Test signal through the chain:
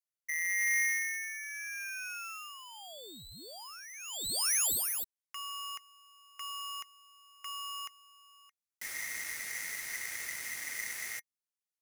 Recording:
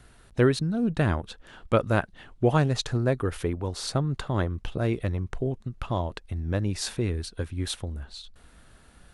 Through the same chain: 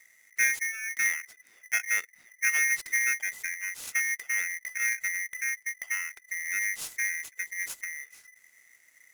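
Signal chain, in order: graphic EQ 125/250/1000/2000/4000/8000 Hz +10/-6/-10/-9/-11/+11 dB; polarity switched at an audio rate 2 kHz; trim -8 dB

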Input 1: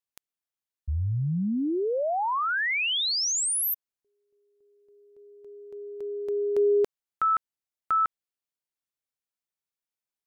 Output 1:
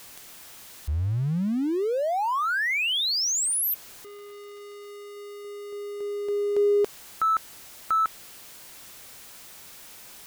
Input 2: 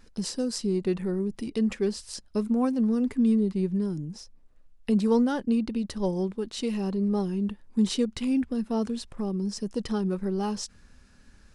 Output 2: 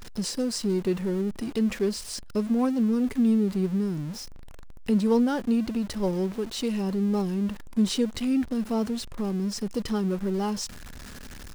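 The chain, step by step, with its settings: jump at every zero crossing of -37 dBFS

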